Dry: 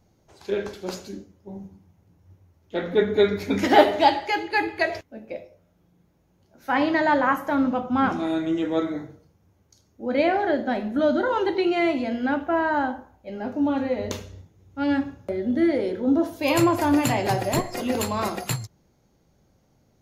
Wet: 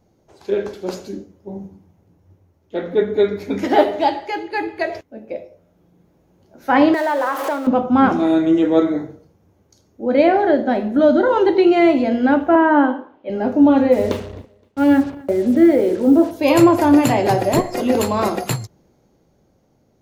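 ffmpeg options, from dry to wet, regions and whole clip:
ffmpeg -i in.wav -filter_complex "[0:a]asettb=1/sr,asplit=3[link_01][link_02][link_03];[link_01]atrim=end=6.944[link_04];[link_02]atrim=start=6.94:end=7.67,asetpts=PTS-STARTPTS,afade=type=in:duration=0.004:curve=qsin,afade=type=out:start_time=0.726:duration=0.004:curve=qsin,aeval=exprs='val(0)+0.5*0.0422*sgn(val(0))':channel_layout=same,acompressor=threshold=-27dB:ratio=2.5:attack=3.2:release=140:knee=1:detection=peak,highpass=frequency=360:width=0.5412,highpass=frequency=360:width=1.3066[link_05];[link_03]atrim=start=7.666[link_06];[link_04][link_05]acrossfade=duration=0.004:curve1=hsin:curve2=qsin[link_07];[link_07][link_06]acrossfade=duration=0.004:curve1=qsin:curve2=hsin,asettb=1/sr,asplit=3[link_08][link_09][link_10];[link_08]atrim=end=12.554[link_11];[link_09]atrim=start=12.55:end=13.3,asetpts=PTS-STARTPTS,afade=type=in:duration=0.004:curve=qsin,afade=type=out:start_time=0.746:duration=0.004:curve=qsin,acrossover=split=2600[link_12][link_13];[link_13]acompressor=threshold=-59dB:ratio=4:attack=1:release=60[link_14];[link_12][link_14]amix=inputs=2:normalize=0,highpass=280,equalizer=frequency=290:width_type=q:width=4:gain=7,equalizer=frequency=750:width_type=q:width=4:gain=-7,equalizer=frequency=1100:width_type=q:width=4:gain=5,equalizer=frequency=3100:width_type=q:width=4:gain=8,lowpass=frequency=3700:width=0.5412,lowpass=frequency=3700:width=1.3066[link_15];[link_10]atrim=start=13.296[link_16];[link_11][link_15]acrossfade=duration=0.004:curve1=hsin:curve2=qsin[link_17];[link_17][link_16]acrossfade=duration=0.004:curve1=qsin:curve2=hsin,asettb=1/sr,asplit=3[link_18][link_19][link_20];[link_18]atrim=end=13.924[link_21];[link_19]atrim=start=13.92:end=16.31,asetpts=PTS-STARTPTS,afade=type=in:duration=0.004:curve=qsin,afade=type=out:start_time=2.386:duration=0.004:curve=qsin,lowpass=3400,acrusher=bits=6:mix=0:aa=0.5,aecho=1:1:260|520:0.0668|0.016,atrim=end_sample=105399[link_22];[link_20]atrim=start=16.306[link_23];[link_21][link_22]acrossfade=duration=0.004:curve1=hsin:curve2=qsin[link_24];[link_24][link_23]acrossfade=duration=0.004:curve1=qsin:curve2=hsin,equalizer=frequency=410:width_type=o:width=2.4:gain=7,dynaudnorm=framelen=150:gausssize=17:maxgain=11.5dB,volume=-1dB" out.wav

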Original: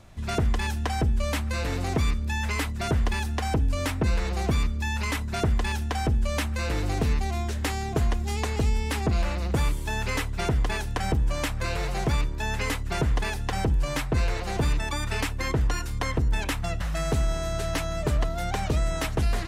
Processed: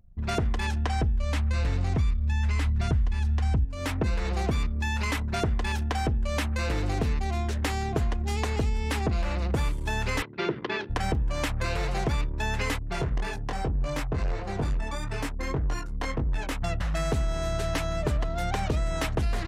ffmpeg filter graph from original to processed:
ffmpeg -i in.wav -filter_complex "[0:a]asettb=1/sr,asplit=3[link_01][link_02][link_03];[link_01]atrim=end=0.654[link_04];[link_02]atrim=start=0.65:end=3.65,asetpts=PTS-STARTPTS,afade=type=in:duration=0.004:curve=qsin,afade=type=out:start_time=2.996:duration=0.004:curve=qsin,lowpass=9600,asubboost=boost=6:cutoff=180[link_05];[link_03]atrim=start=3.646[link_06];[link_04][link_05]acrossfade=duration=0.004:curve1=hsin:curve2=qsin[link_07];[link_07][link_06]acrossfade=duration=0.004:curve1=qsin:curve2=hsin,asettb=1/sr,asplit=3[link_08][link_09][link_10];[link_08]atrim=end=10.224[link_11];[link_09]atrim=start=10.22:end=10.9,asetpts=PTS-STARTPTS,afade=type=in:duration=0.004:curve=qsin,afade=type=out:start_time=0.676:duration=0.004:curve=qsin,bandreject=frequency=60:width_type=h:width=6,bandreject=frequency=120:width_type=h:width=6,bandreject=frequency=180:width_type=h:width=6,bandreject=frequency=240:width_type=h:width=6,bandreject=frequency=300:width_type=h:width=6,bandreject=frequency=360:width_type=h:width=6,acompressor=mode=upward:threshold=-26dB:ratio=2.5:attack=3.2:release=140:knee=2.83:detection=peak,highpass=frequency=160:width=0.5412,highpass=frequency=160:width=1.3066,equalizer=frequency=250:width_type=q:width=4:gain=-6,equalizer=frequency=350:width_type=q:width=4:gain=10,equalizer=frequency=730:width_type=q:width=4:gain=-9,lowpass=frequency=4500:width=0.5412,lowpass=frequency=4500:width=1.3066[link_12];[link_10]atrim=start=10.896[link_13];[link_11][link_12]acrossfade=duration=0.004:curve1=hsin:curve2=qsin[link_14];[link_14][link_13]acrossfade=duration=0.004:curve1=qsin:curve2=hsin,asettb=1/sr,asplit=3[link_15][link_16][link_17];[link_15]atrim=end=12.794[link_18];[link_16]atrim=start=12.79:end=16.62,asetpts=PTS-STARTPTS,afade=type=in:duration=0.004:curve=qsin,afade=type=out:start_time=3.826:duration=0.004:curve=qsin,adynamicequalizer=threshold=0.00501:dfrequency=3000:dqfactor=0.79:tfrequency=3000:tqfactor=0.79:attack=5:release=100:ratio=0.375:range=3:mode=cutabove:tftype=bell,flanger=delay=20:depth=3.2:speed=1.7,volume=23.5dB,asoftclip=hard,volume=-23.5dB[link_19];[link_17]atrim=start=16.616[link_20];[link_18][link_19]acrossfade=duration=0.004:curve1=hsin:curve2=qsin[link_21];[link_21][link_20]acrossfade=duration=0.004:curve1=qsin:curve2=hsin,anlmdn=0.398,highshelf=frequency=7500:gain=-5,acompressor=threshold=-24dB:ratio=6,volume=1.5dB" out.wav

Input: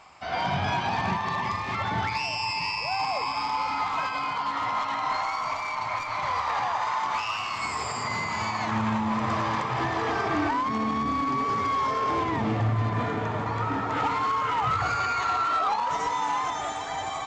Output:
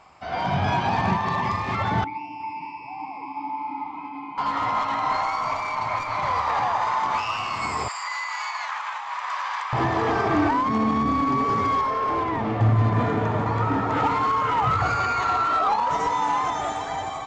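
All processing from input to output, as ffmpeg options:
ffmpeg -i in.wav -filter_complex "[0:a]asettb=1/sr,asplit=3[link_01][link_02][link_03];[link_01]atrim=end=2.044[link_04];[link_02]atrim=start=2.04:end=4.38,asetpts=PTS-STARTPTS,afade=type=in:duration=0.004:curve=qsin,afade=type=out:start_time=2.336:duration=0.004:curve=qsin,asplit=3[link_05][link_06][link_07];[link_05]bandpass=frequency=300:width_type=q:width=8,volume=0dB[link_08];[link_06]bandpass=frequency=870:width_type=q:width=8,volume=-6dB[link_09];[link_07]bandpass=frequency=2240:width_type=q:width=8,volume=-9dB[link_10];[link_08][link_09][link_10]amix=inputs=3:normalize=0,lowshelf=frequency=490:gain=5,aecho=1:1:361:0.355,atrim=end_sample=103194[link_11];[link_03]atrim=start=4.376[link_12];[link_04][link_11]acrossfade=duration=0.004:curve1=hsin:curve2=qsin[link_13];[link_13][link_12]acrossfade=duration=0.004:curve1=qsin:curve2=hsin,asettb=1/sr,asplit=3[link_14][link_15][link_16];[link_14]atrim=end=7.884[link_17];[link_15]atrim=start=7.88:end=9.73,asetpts=PTS-STARTPTS,afade=type=in:duration=0.004:curve=qsin,afade=type=out:start_time=1.846:duration=0.004:curve=qsin,highpass=frequency=1100:width=0.5412,highpass=frequency=1100:width=1.3066,afreqshift=-38[link_18];[link_16]atrim=start=9.726[link_19];[link_17][link_18]acrossfade=duration=0.004:curve1=hsin:curve2=qsin[link_20];[link_20][link_19]acrossfade=duration=0.004:curve1=qsin:curve2=hsin,asettb=1/sr,asplit=3[link_21][link_22][link_23];[link_21]atrim=end=11.814[link_24];[link_22]atrim=start=11.81:end=12.61,asetpts=PTS-STARTPTS,afade=type=in:duration=0.004:curve=qsin,afade=type=out:start_time=0.796:duration=0.004:curve=qsin,equalizer=frequency=150:width=0.47:gain=-8,asoftclip=type=hard:threshold=-23dB,lowpass=frequency=3200:poles=1[link_25];[link_23]atrim=start=12.606[link_26];[link_24][link_25]acrossfade=duration=0.004:curve1=hsin:curve2=qsin[link_27];[link_27][link_26]acrossfade=duration=0.004:curve1=qsin:curve2=hsin,tiltshelf=frequency=1300:gain=3.5,dynaudnorm=framelen=150:gausssize=7:maxgain=4dB,volume=-1dB" out.wav

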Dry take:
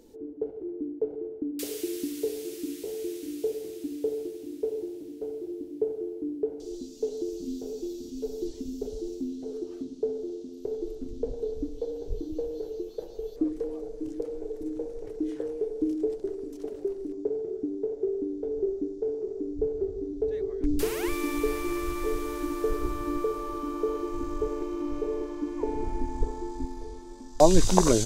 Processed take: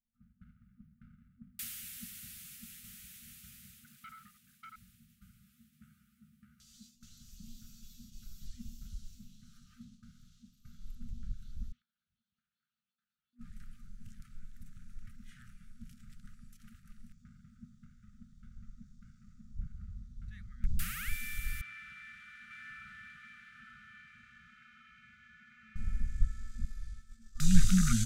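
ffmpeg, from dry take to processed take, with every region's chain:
ffmpeg -i in.wav -filter_complex "[0:a]asettb=1/sr,asplit=3[link_01][link_02][link_03];[link_01]atrim=end=3.844[link_04];[link_02]atrim=start=3.84:end=4.76,asetpts=PTS-STARTPTS,afade=type=in:duration=0.004:curve=qsin,afade=type=out:start_time=0.916:duration=0.004:curve=qsin,highpass=49,lowshelf=frequency=130:gain=-11.5,volume=35.5dB,asoftclip=hard,volume=-35.5dB[link_05];[link_03]atrim=start=4.756[link_06];[link_04][link_05]acrossfade=duration=0.004:curve1=hsin:curve2=qsin[link_07];[link_07][link_06]acrossfade=duration=0.004:curve1=qsin:curve2=hsin,asettb=1/sr,asplit=3[link_08][link_09][link_10];[link_08]atrim=end=5.454[link_11];[link_09]atrim=start=5.45:end=6.95,asetpts=PTS-STARTPTS,afade=type=in:duration=0.004:curve=qsin,afade=type=out:start_time=1.496:duration=0.004:curve=qsin,highpass=frequency=250:poles=1,asplit=2[link_12][link_13];[link_13]adelay=14,volume=-4dB[link_14];[link_12][link_14]amix=inputs=2:normalize=0,atrim=end_sample=66150[link_15];[link_10]atrim=start=6.946[link_16];[link_11][link_15]acrossfade=duration=0.004:curve1=hsin:curve2=qsin[link_17];[link_17][link_16]acrossfade=duration=0.004:curve1=qsin:curve2=hsin,asettb=1/sr,asplit=3[link_18][link_19][link_20];[link_18]atrim=end=11.724[link_21];[link_19]atrim=start=11.72:end=13.39,asetpts=PTS-STARTPTS,afade=type=in:duration=0.004:curve=qsin,afade=type=out:start_time=1.666:duration=0.004:curve=qsin,highpass=540,lowpass=2500,acompressor=threshold=-44dB:ratio=4:attack=3.2:release=140:knee=1:detection=peak[link_22];[link_20]atrim=start=13.386[link_23];[link_21][link_22]acrossfade=duration=0.004:curve1=hsin:curve2=qsin[link_24];[link_24][link_23]acrossfade=duration=0.004:curve1=qsin:curve2=hsin,asettb=1/sr,asplit=3[link_25][link_26][link_27];[link_25]atrim=end=21.614[link_28];[link_26]atrim=start=21.61:end=25.76,asetpts=PTS-STARTPTS,afade=type=in:duration=0.004:curve=qsin,afade=type=out:start_time=4.146:duration=0.004:curve=qsin,highpass=360,lowpass=2600,aecho=1:1:897:0.668,atrim=end_sample=183015[link_29];[link_27]atrim=start=25.756[link_30];[link_28][link_29]acrossfade=duration=0.004:curve1=hsin:curve2=qsin[link_31];[link_31][link_30]acrossfade=duration=0.004:curve1=qsin:curve2=hsin,agate=range=-33dB:threshold=-37dB:ratio=3:detection=peak,afftfilt=real='re*(1-between(b*sr/4096,240,1200))':imag='im*(1-between(b*sr/4096,240,1200))':win_size=4096:overlap=0.75,equalizer=frequency=5100:width_type=o:width=1.6:gain=-8.5" out.wav

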